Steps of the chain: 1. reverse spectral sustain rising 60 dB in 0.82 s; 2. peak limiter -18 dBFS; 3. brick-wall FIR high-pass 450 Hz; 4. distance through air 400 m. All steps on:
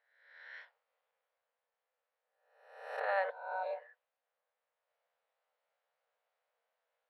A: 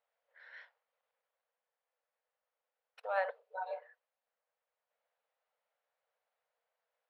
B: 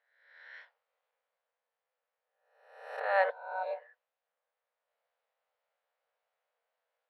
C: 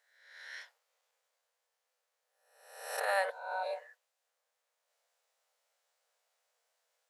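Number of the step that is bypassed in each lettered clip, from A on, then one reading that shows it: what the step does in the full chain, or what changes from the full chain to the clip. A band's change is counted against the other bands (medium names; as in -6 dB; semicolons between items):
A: 1, 4 kHz band -1.5 dB; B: 2, crest factor change +2.0 dB; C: 4, 4 kHz band +9.0 dB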